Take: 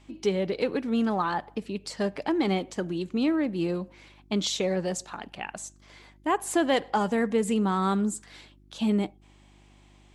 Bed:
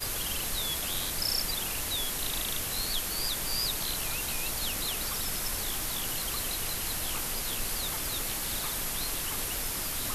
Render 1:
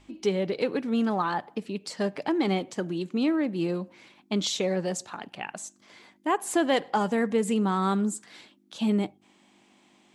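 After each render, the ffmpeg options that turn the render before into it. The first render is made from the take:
-af "bandreject=f=50:t=h:w=4,bandreject=f=100:t=h:w=4,bandreject=f=150:t=h:w=4"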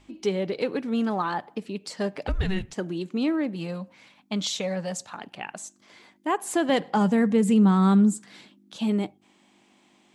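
-filter_complex "[0:a]asettb=1/sr,asplit=3[a][b][c];[a]atrim=end=2.274[d];[b]atrim=start=2.27:end=2.73,asetpts=PTS-STARTPTS,afade=t=in:d=0.004:c=qsin,afade=t=out:st=0.456:d=0.004:c=qsin,afreqshift=-380[e];[c]atrim=start=2.726[f];[d][e]acrossfade=d=0.004:c1=hsin:c2=qsin[g];[g][f]acrossfade=d=0.004:c1=qsin:c2=hsin,asettb=1/sr,asplit=3[h][i][j];[h]atrim=end=3.554[k];[i]atrim=start=3.55:end=5.16,asetpts=PTS-STARTPTS,afade=t=in:d=0.004:c=qsin,afade=t=out:st=1.606:d=0.004:c=qsin,equalizer=f=360:t=o:w=0.3:g=-14.5[l];[j]atrim=start=5.156[m];[k][l]acrossfade=d=0.004:c1=hsin:c2=qsin[n];[n][m]acrossfade=d=0.004:c1=qsin:c2=hsin,asettb=1/sr,asplit=3[o][p][q];[o]atrim=end=6.694[r];[p]atrim=start=6.69:end=8.78,asetpts=PTS-STARTPTS,afade=t=in:d=0.004:c=qsin,afade=t=out:st=2.086:d=0.004:c=qsin,equalizer=f=180:w=1.5:g=10[s];[q]atrim=start=8.776[t];[r][s]acrossfade=d=0.004:c1=hsin:c2=qsin[u];[u][t]acrossfade=d=0.004:c1=qsin:c2=hsin"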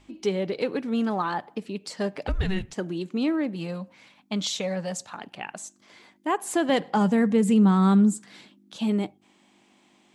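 -af anull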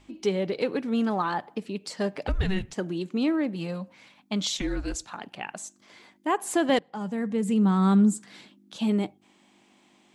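-filter_complex "[0:a]asplit=3[a][b][c];[a]afade=t=out:st=4.57:d=0.02[d];[b]afreqshift=-230,afade=t=in:st=4.57:d=0.02,afade=t=out:st=5.05:d=0.02[e];[c]afade=t=in:st=5.05:d=0.02[f];[d][e][f]amix=inputs=3:normalize=0,asplit=2[g][h];[g]atrim=end=6.79,asetpts=PTS-STARTPTS,afade=t=out:st=6.786:d=0.004:c=hsin:silence=0.11885[i];[h]atrim=start=6.79,asetpts=PTS-STARTPTS,afade=t=in:d=1.36:silence=0.11885[j];[i][j]concat=n=2:v=0:a=1"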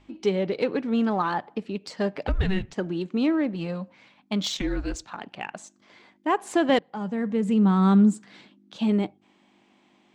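-filter_complex "[0:a]asplit=2[a][b];[b]aeval=exprs='sgn(val(0))*max(abs(val(0))-0.00596,0)':c=same,volume=-11dB[c];[a][c]amix=inputs=2:normalize=0,adynamicsmooth=sensitivity=1.5:basefreq=5.3k"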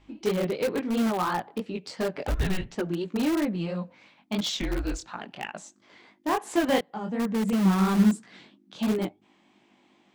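-filter_complex "[0:a]flanger=delay=17:depth=6.4:speed=2.9,asplit=2[a][b];[b]aeval=exprs='(mod(13.3*val(0)+1,2)-1)/13.3':c=same,volume=-10dB[c];[a][c]amix=inputs=2:normalize=0"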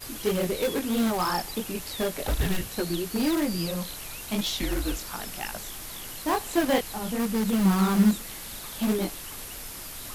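-filter_complex "[1:a]volume=-6dB[a];[0:a][a]amix=inputs=2:normalize=0"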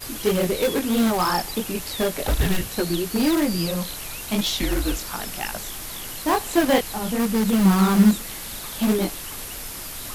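-af "volume=5dB"

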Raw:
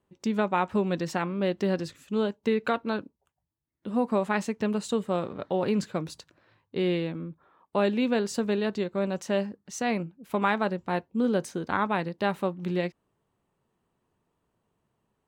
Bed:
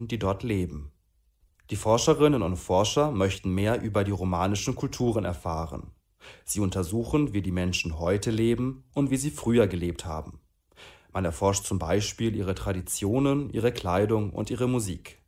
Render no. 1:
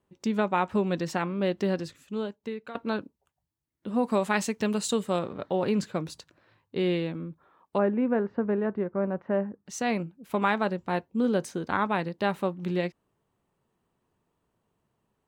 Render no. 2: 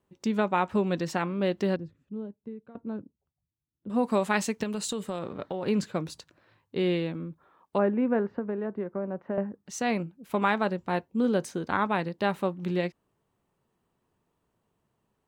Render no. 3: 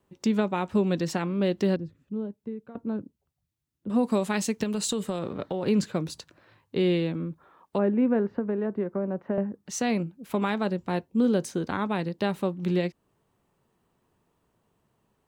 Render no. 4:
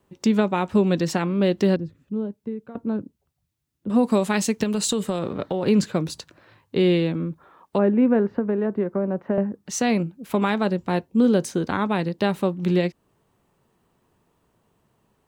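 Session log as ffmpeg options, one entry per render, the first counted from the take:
-filter_complex "[0:a]asettb=1/sr,asplit=3[a][b][c];[a]atrim=end=4.034[d];[b]atrim=start=4.03:end=5.19,asetpts=PTS-STARTPTS,afade=t=in:d=0.004:c=qsin,afade=t=out:st=1.156:d=0.004:c=qsin,highshelf=f=3.1k:g=9.5[e];[c]atrim=start=5.186[f];[d][e]acrossfade=d=0.004:c1=hsin:c2=qsin[g];[g][f]acrossfade=d=0.004:c1=qsin:c2=hsin,asplit=3[h][i][j];[h]afade=t=out:st=7.77:d=0.02[k];[i]lowpass=f=1.7k:w=0.5412,lowpass=f=1.7k:w=1.3066,afade=t=in:st=7.77:d=0.02,afade=t=out:st=9.65:d=0.02[l];[j]afade=t=in:st=9.65:d=0.02[m];[k][l][m]amix=inputs=3:normalize=0,asplit=2[n][o];[n]atrim=end=2.75,asetpts=PTS-STARTPTS,afade=t=out:st=1.6:d=1.15:silence=0.149624[p];[o]atrim=start=2.75,asetpts=PTS-STARTPTS,afade=t=in:d=0.004:c=hsin:silence=0.149624[q];[p][q]concat=n=2:v=0:a=1"
-filter_complex "[0:a]asettb=1/sr,asplit=3[a][b][c];[a]atrim=end=1.764[d];[b]atrim=start=1.76:end=3.9,asetpts=PTS-STARTPTS,afade=t=in:d=0.004:c=qsin,afade=t=out:st=2.136:d=0.004:c=qsin,bandpass=f=110:t=q:w=0.62[e];[c]atrim=start=3.896[f];[d][e]acrossfade=d=0.004:c1=hsin:c2=qsin[g];[g][f]acrossfade=d=0.004:c1=qsin:c2=hsin,asettb=1/sr,asplit=3[h][i][j];[h]atrim=end=4.634[k];[i]atrim=start=4.63:end=5.67,asetpts=PTS-STARTPTS,afade=t=in:d=0.004:c=qsin,afade=t=out:st=1.036:d=0.004:c=qsin,acompressor=threshold=-28dB:ratio=6:attack=3.2:release=140:knee=1:detection=peak[l];[j]atrim=start=5.666[m];[k][l]acrossfade=d=0.004:c1=hsin:c2=qsin[n];[n][m]acrossfade=d=0.004:c1=qsin:c2=hsin,asettb=1/sr,asplit=3[o][p][q];[o]atrim=end=8.294[r];[p]atrim=start=8.29:end=9.38,asetpts=PTS-STARTPTS,afade=t=in:d=0.004:c=qsin,afade=t=out:st=1.086:d=0.004:c=qsin,acrossover=split=150|870[s][t][u];[s]acompressor=threshold=-55dB:ratio=4[v];[t]acompressor=threshold=-29dB:ratio=4[w];[u]acompressor=threshold=-47dB:ratio=4[x];[v][w][x]amix=inputs=3:normalize=0[y];[q]atrim=start=9.376[z];[r][y]acrossfade=d=0.004:c1=hsin:c2=qsin[aa];[aa][z]acrossfade=d=0.004:c1=qsin:c2=hsin"
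-filter_complex "[0:a]asplit=2[a][b];[b]alimiter=limit=-21dB:level=0:latency=1:release=356,volume=-3dB[c];[a][c]amix=inputs=2:normalize=0,acrossover=split=490|3000[d][e][f];[e]acompressor=threshold=-43dB:ratio=1.5[g];[d][g][f]amix=inputs=3:normalize=0"
-af "volume=5dB"

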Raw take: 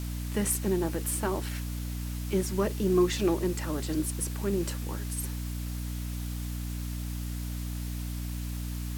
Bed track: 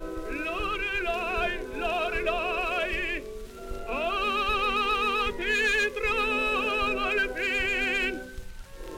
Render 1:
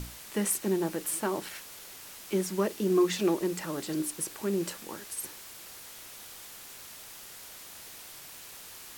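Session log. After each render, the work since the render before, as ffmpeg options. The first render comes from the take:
-af "bandreject=f=60:t=h:w=6,bandreject=f=120:t=h:w=6,bandreject=f=180:t=h:w=6,bandreject=f=240:t=h:w=6,bandreject=f=300:t=h:w=6"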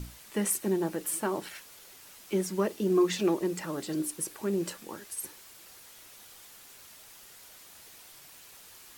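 -af "afftdn=nr=6:nf=-47"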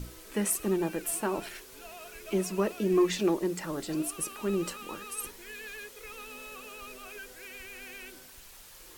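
-filter_complex "[1:a]volume=-19dB[a];[0:a][a]amix=inputs=2:normalize=0"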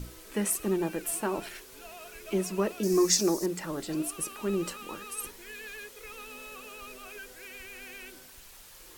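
-filter_complex "[0:a]asettb=1/sr,asplit=3[a][b][c];[a]atrim=end=2.834[d];[b]atrim=start=2.83:end=3.46,asetpts=PTS-STARTPTS,afade=t=in:d=0.004:c=qsin,afade=t=out:st=0.626:d=0.004:c=qsin,highshelf=f=4.1k:t=q:w=3:g=10[e];[c]atrim=start=3.456[f];[d][e]acrossfade=d=0.004:c1=hsin:c2=qsin[g];[g][f]acrossfade=d=0.004:c1=qsin:c2=hsin"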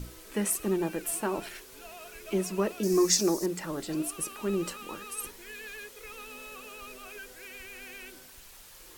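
-af anull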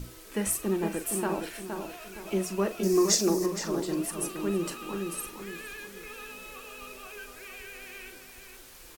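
-filter_complex "[0:a]asplit=2[a][b];[b]adelay=41,volume=-12dB[c];[a][c]amix=inputs=2:normalize=0,asplit=2[d][e];[e]adelay=467,lowpass=f=2.4k:p=1,volume=-5.5dB,asplit=2[f][g];[g]adelay=467,lowpass=f=2.4k:p=1,volume=0.38,asplit=2[h][i];[i]adelay=467,lowpass=f=2.4k:p=1,volume=0.38,asplit=2[j][k];[k]adelay=467,lowpass=f=2.4k:p=1,volume=0.38,asplit=2[l][m];[m]adelay=467,lowpass=f=2.4k:p=1,volume=0.38[n];[f][h][j][l][n]amix=inputs=5:normalize=0[o];[d][o]amix=inputs=2:normalize=0"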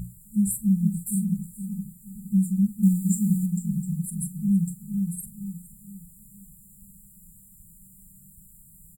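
-af "afftfilt=real='re*(1-between(b*sr/4096,220,7100))':imag='im*(1-between(b*sr/4096,220,7100))':win_size=4096:overlap=0.75,equalizer=f=170:t=o:w=1.1:g=14"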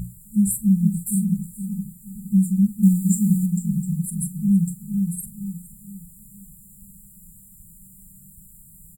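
-af "volume=4dB"

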